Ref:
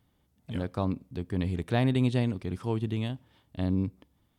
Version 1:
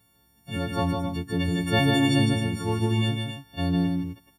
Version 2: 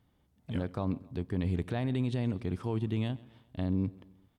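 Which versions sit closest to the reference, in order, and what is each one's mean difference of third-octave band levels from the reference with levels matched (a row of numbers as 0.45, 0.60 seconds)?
2, 1; 2.5, 9.0 decibels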